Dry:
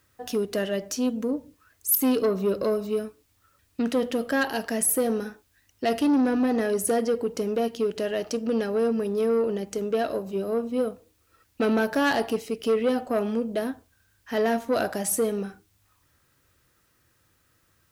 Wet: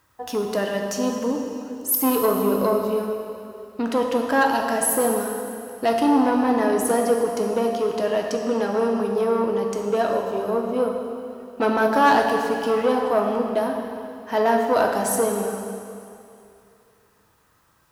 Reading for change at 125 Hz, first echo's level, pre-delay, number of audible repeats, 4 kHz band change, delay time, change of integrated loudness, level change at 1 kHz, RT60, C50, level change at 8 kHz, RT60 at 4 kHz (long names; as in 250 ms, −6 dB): can't be measured, no echo audible, 4 ms, no echo audible, +2.5 dB, no echo audible, +4.0 dB, +10.5 dB, 2.6 s, 3.5 dB, +2.0 dB, 2.4 s